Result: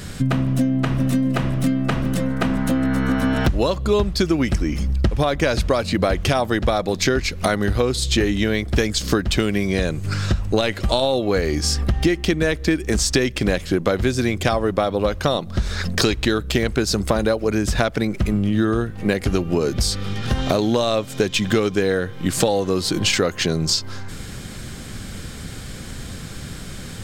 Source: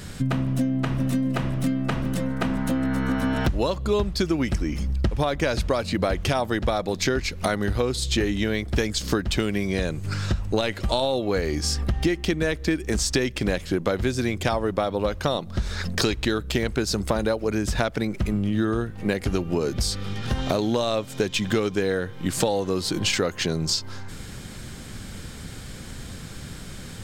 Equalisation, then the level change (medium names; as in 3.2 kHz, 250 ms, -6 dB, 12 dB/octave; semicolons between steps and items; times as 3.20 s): band-stop 900 Hz, Q 18; +4.5 dB